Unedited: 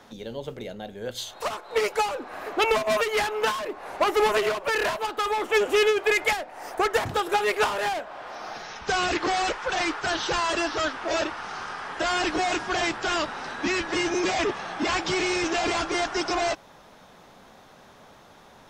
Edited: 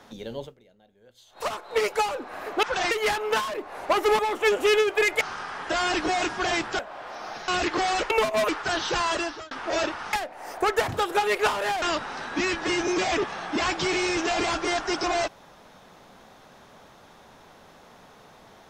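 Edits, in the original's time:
0:00.44–0:01.39: duck −22.5 dB, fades 0.42 s exponential
0:02.63–0:03.02: swap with 0:09.59–0:09.87
0:04.30–0:05.28: remove
0:06.30–0:07.99: swap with 0:11.51–0:13.09
0:08.68–0:08.97: remove
0:10.50–0:10.89: fade out

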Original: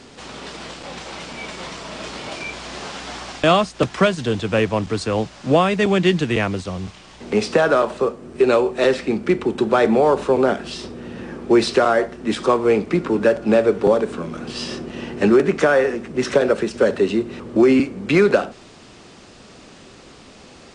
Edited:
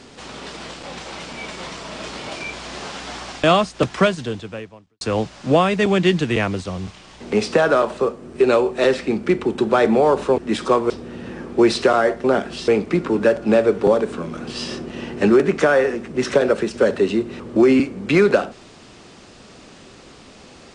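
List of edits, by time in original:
0:04.06–0:05.01: fade out quadratic
0:10.38–0:10.82: swap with 0:12.16–0:12.68

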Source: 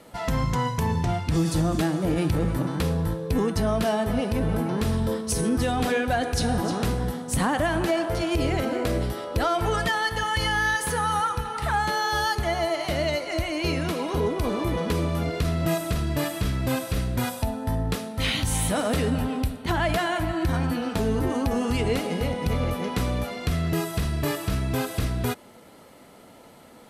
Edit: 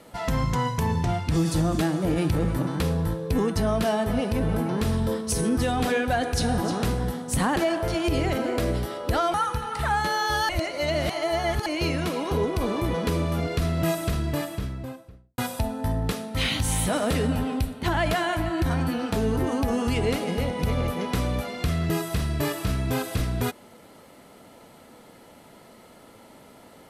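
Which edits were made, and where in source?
0:07.56–0:07.83: remove
0:09.61–0:11.17: remove
0:12.32–0:13.49: reverse
0:15.87–0:17.21: fade out and dull

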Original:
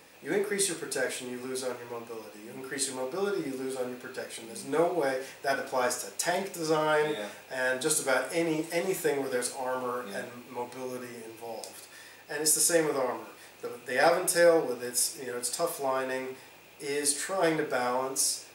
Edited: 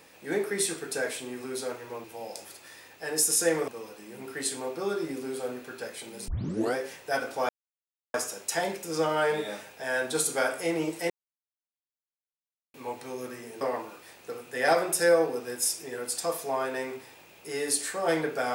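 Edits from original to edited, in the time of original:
0:04.64: tape start 0.47 s
0:05.85: splice in silence 0.65 s
0:08.81–0:10.45: silence
0:11.32–0:12.96: move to 0:02.04

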